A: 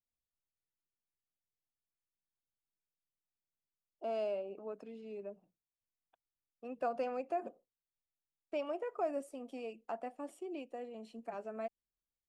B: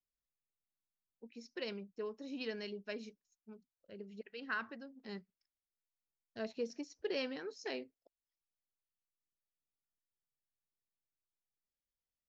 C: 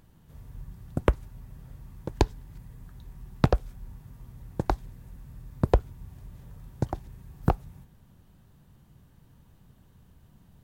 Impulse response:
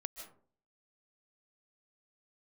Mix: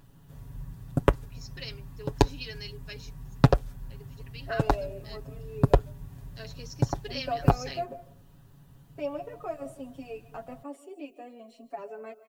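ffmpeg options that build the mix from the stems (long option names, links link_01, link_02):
-filter_complex "[0:a]asplit=2[link_01][link_02];[link_02]adelay=5.9,afreqshift=1.1[link_03];[link_01][link_03]amix=inputs=2:normalize=1,adelay=450,volume=0.5dB,asplit=2[link_04][link_05];[link_05]volume=-4dB[link_06];[1:a]crystalizer=i=9:c=0,volume=-8.5dB[link_07];[2:a]bandreject=frequency=2200:width=14,volume=1dB[link_08];[3:a]atrim=start_sample=2205[link_09];[link_06][link_09]afir=irnorm=-1:irlink=0[link_10];[link_04][link_07][link_08][link_10]amix=inputs=4:normalize=0,aecho=1:1:7.2:0.67"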